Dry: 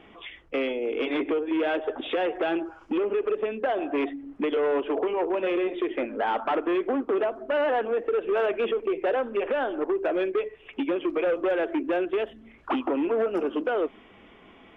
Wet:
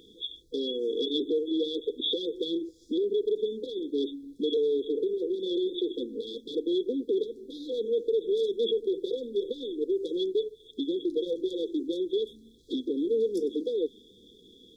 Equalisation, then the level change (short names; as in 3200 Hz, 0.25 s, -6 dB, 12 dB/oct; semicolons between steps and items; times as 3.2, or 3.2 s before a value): brick-wall FIR band-stop 510–3300 Hz; tilt shelf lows -5 dB, about 1400 Hz; low shelf 480 Hz -9.5 dB; +8.5 dB